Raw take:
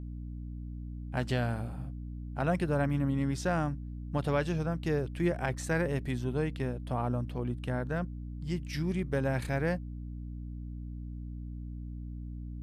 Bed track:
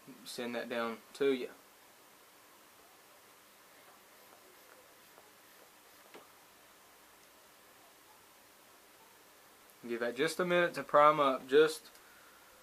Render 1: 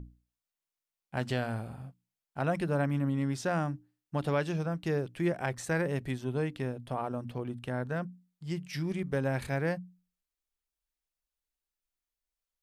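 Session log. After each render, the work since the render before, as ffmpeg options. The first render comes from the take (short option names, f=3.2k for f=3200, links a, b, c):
-af "bandreject=f=60:t=h:w=6,bandreject=f=120:t=h:w=6,bandreject=f=180:t=h:w=6,bandreject=f=240:t=h:w=6,bandreject=f=300:t=h:w=6"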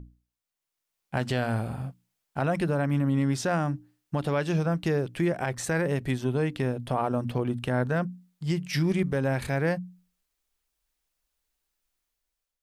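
-af "dynaudnorm=f=320:g=5:m=10dB,alimiter=limit=-16dB:level=0:latency=1:release=290"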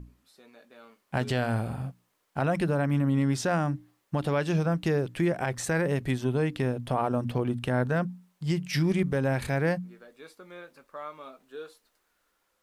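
-filter_complex "[1:a]volume=-15.5dB[a];[0:a][a]amix=inputs=2:normalize=0"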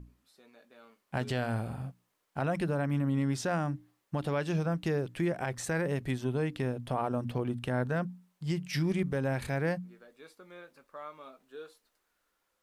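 -af "volume=-4.5dB"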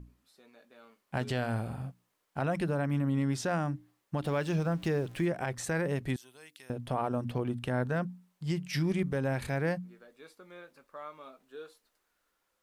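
-filter_complex "[0:a]asettb=1/sr,asplit=3[a][b][c];[a]atrim=end=4.254[d];[b]atrim=start=4.25:end=5.26,asetpts=PTS-STARTPTS,afade=t=in:d=0.004:c=qsin,afade=t=out:st=1.006:d=0.004:c=qsin,aeval=exprs='val(0)+0.5*0.00422*sgn(val(0))':c=same[e];[c]atrim=start=5.256[f];[d][e]acrossfade=d=0.004:c1=hsin:c2=qsin[g];[g][f]acrossfade=d=0.004:c1=qsin:c2=hsin,asettb=1/sr,asplit=3[h][i][j];[h]atrim=end=6.164[k];[i]atrim=start=6.16:end=6.7,asetpts=PTS-STARTPTS,afade=t=in:d=0.004:c=qsin,afade=t=out:st=0.536:d=0.004:c=qsin,aderivative[l];[j]atrim=start=6.696[m];[k][l]acrossfade=d=0.004:c1=hsin:c2=qsin[n];[n][m]acrossfade=d=0.004:c1=qsin:c2=hsin"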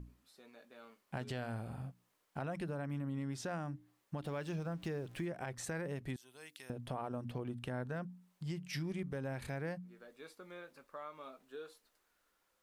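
-af "acompressor=threshold=-45dB:ratio=2"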